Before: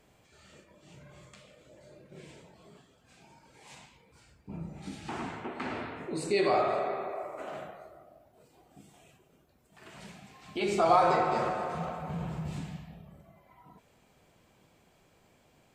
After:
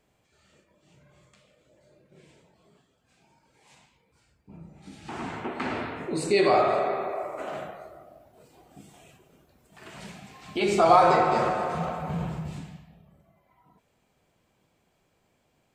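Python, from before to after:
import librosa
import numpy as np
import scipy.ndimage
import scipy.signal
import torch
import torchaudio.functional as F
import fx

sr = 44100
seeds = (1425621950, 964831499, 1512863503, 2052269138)

y = fx.gain(x, sr, db=fx.line((4.82, -6.0), (5.37, 5.5), (12.21, 5.5), (12.89, -5.5)))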